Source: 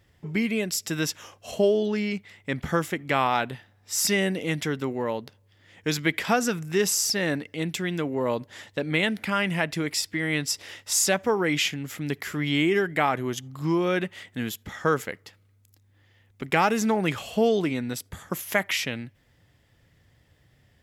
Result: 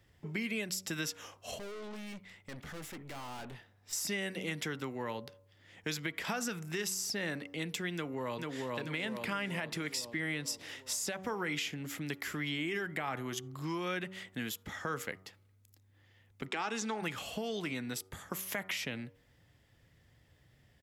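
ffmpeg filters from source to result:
ffmpeg -i in.wav -filter_complex "[0:a]asettb=1/sr,asplit=3[link_01][link_02][link_03];[link_01]atrim=end=1.584[link_04];[link_02]atrim=start=1.58:end=3.93,asetpts=PTS-STARTPTS,afade=type=in:duration=0.004:curve=qsin,afade=type=out:start_time=2.346:duration=0.004:curve=qsin,aeval=exprs='(tanh(89.1*val(0)+0.35)-tanh(0.35))/89.1':channel_layout=same[link_05];[link_03]atrim=start=3.926[link_06];[link_04][link_05]acrossfade=duration=0.004:curve1=hsin:curve2=qsin[link_07];[link_07][link_06]acrossfade=duration=0.004:curve1=qsin:curve2=hsin,asplit=2[link_08][link_09];[link_09]afade=type=in:start_time=7.94:duration=0.01,afade=type=out:start_time=8.7:duration=0.01,aecho=0:1:440|880|1320|1760|2200|2640|3080|3520:0.707946|0.38937|0.214154|0.117784|0.0647815|0.0356298|0.0195964|0.010778[link_10];[link_08][link_10]amix=inputs=2:normalize=0,asplit=3[link_11][link_12][link_13];[link_11]afade=type=out:start_time=16.47:duration=0.02[link_14];[link_12]highpass=frequency=250:width=0.5412,highpass=frequency=250:width=1.3066,equalizer=frequency=560:width_type=q:width=4:gain=-9,equalizer=frequency=2000:width_type=q:width=4:gain=-3,equalizer=frequency=3600:width_type=q:width=4:gain=4,lowpass=frequency=8400:width=0.5412,lowpass=frequency=8400:width=1.3066,afade=type=in:start_time=16.47:duration=0.02,afade=type=out:start_time=17.01:duration=0.02[link_15];[link_13]afade=type=in:start_time=17.01:duration=0.02[link_16];[link_14][link_15][link_16]amix=inputs=3:normalize=0,alimiter=limit=-16dB:level=0:latency=1:release=102,bandreject=frequency=94.46:width_type=h:width=4,bandreject=frequency=188.92:width_type=h:width=4,bandreject=frequency=283.38:width_type=h:width=4,bandreject=frequency=377.84:width_type=h:width=4,bandreject=frequency=472.3:width_type=h:width=4,bandreject=frequency=566.76:width_type=h:width=4,bandreject=frequency=661.22:width_type=h:width=4,bandreject=frequency=755.68:width_type=h:width=4,bandreject=frequency=850.14:width_type=h:width=4,bandreject=frequency=944.6:width_type=h:width=4,bandreject=frequency=1039.06:width_type=h:width=4,bandreject=frequency=1133.52:width_type=h:width=4,bandreject=frequency=1227.98:width_type=h:width=4,bandreject=frequency=1322.44:width_type=h:width=4,bandreject=frequency=1416.9:width_type=h:width=4,acrossover=split=200|1000[link_17][link_18][link_19];[link_17]acompressor=threshold=-42dB:ratio=4[link_20];[link_18]acompressor=threshold=-36dB:ratio=4[link_21];[link_19]acompressor=threshold=-31dB:ratio=4[link_22];[link_20][link_21][link_22]amix=inputs=3:normalize=0,volume=-4dB" out.wav

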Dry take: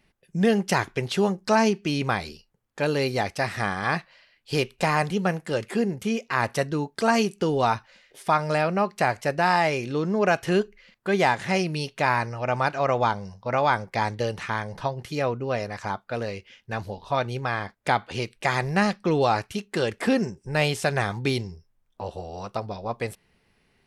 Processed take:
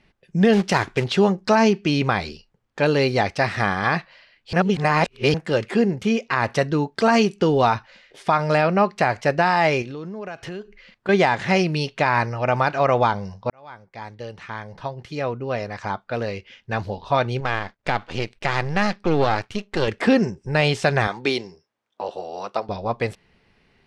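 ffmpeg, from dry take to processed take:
ffmpeg -i in.wav -filter_complex "[0:a]asettb=1/sr,asplit=3[link_01][link_02][link_03];[link_01]atrim=end=0.534[link_04];[link_02]atrim=start=0.53:end=1.04,asetpts=PTS-STARTPTS,afade=type=in:duration=0.004:curve=qsin,afade=type=out:start_time=0.506:duration=0.004:curve=qsin,acrusher=bits=3:mode=log:mix=0:aa=0.000001[link_05];[link_03]atrim=start=1.036[link_06];[link_04][link_05]acrossfade=duration=0.004:curve1=hsin:curve2=qsin[link_07];[link_07][link_06]acrossfade=duration=0.004:curve1=qsin:curve2=hsin,asettb=1/sr,asplit=3[link_08][link_09][link_10];[link_08]atrim=end=9.824[link_11];[link_09]atrim=start=9.82:end=11.09,asetpts=PTS-STARTPTS,afade=type=in:duration=0.004:curve=qsin,afade=type=out:start_time=1.266:duration=0.004:curve=qsin,acompressor=threshold=-37dB:ratio=5:attack=3.2:release=140:knee=1:detection=peak[link_12];[link_10]atrim=start=11.086[link_13];[link_11][link_12]acrossfade=duration=0.004:curve1=hsin:curve2=qsin[link_14];[link_14][link_13]acrossfade=duration=0.004:curve1=qsin:curve2=hsin,asettb=1/sr,asplit=3[link_15][link_16][link_17];[link_15]atrim=end=17.404[link_18];[link_16]atrim=start=17.4:end=19.88,asetpts=PTS-STARTPTS,afade=type=in:duration=0.004:curve=qsin,afade=type=out:start_time=2.476:duration=0.004:curve=qsin,aeval=exprs='if(lt(val(0),0),0.251*val(0),val(0))':channel_layout=same[link_19];[link_17]atrim=start=19.876[link_20];[link_18][link_19]acrossfade=duration=0.004:curve1=hsin:curve2=qsin[link_21];[link_21][link_20]acrossfade=duration=0.004:curve1=qsin:curve2=hsin,asettb=1/sr,asplit=3[link_22][link_23][link_24];[link_22]atrim=end=21.074[link_25];[link_23]atrim=start=21.07:end=22.69,asetpts=PTS-STARTPTS,afade=type=in:duration=0.004:curve=qsin,afade=type=out:start_time=1.616:duration=0.004:curve=qsin,highpass=320[link_26];[link_24]atrim=start=22.686[link_27];[link_25][link_26]acrossfade=duration=0.004:curve1=hsin:curve2=qsin[link_28];[link_28][link_27]acrossfade=duration=0.004:curve1=qsin:curve2=hsin,asplit=4[link_29][link_30][link_31][link_32];[link_29]atrim=end=4.532[link_33];[link_30]atrim=start=4.528:end=5.342,asetpts=PTS-STARTPTS,areverse[link_34];[link_31]atrim=start=5.338:end=13.5,asetpts=PTS-STARTPTS,afade=type=out:start_time=8.158:duration=0.004:curve=hsin[link_35];[link_32]atrim=start=13.5,asetpts=PTS-STARTPTS,afade=type=in:duration=3.35[link_36];[link_33][link_34]acrossfade=duration=0.004:curve1=hsin:curve2=hsin[link_37];[link_35][link_36]concat=n=2:v=0:a=1[link_38];[link_37][link_38]acrossfade=duration=0.004:curve1=hsin:curve2=hsin,lowpass=5300,alimiter=level_in=11.5dB:limit=-1dB:release=50:level=0:latency=1,volume=-6dB" out.wav

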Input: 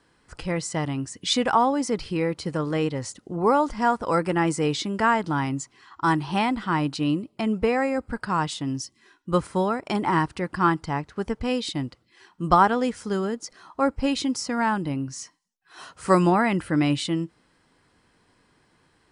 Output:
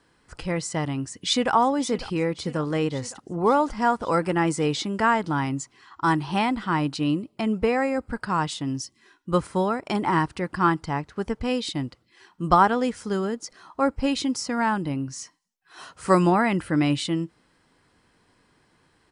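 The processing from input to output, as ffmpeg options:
ffmpeg -i in.wav -filter_complex "[0:a]asplit=2[link_01][link_02];[link_02]afade=type=in:start_time=1.03:duration=0.01,afade=type=out:start_time=1.54:duration=0.01,aecho=0:1:550|1100|1650|2200|2750|3300|3850:0.177828|0.115588|0.0751323|0.048836|0.0317434|0.0206332|0.0134116[link_03];[link_01][link_03]amix=inputs=2:normalize=0" out.wav

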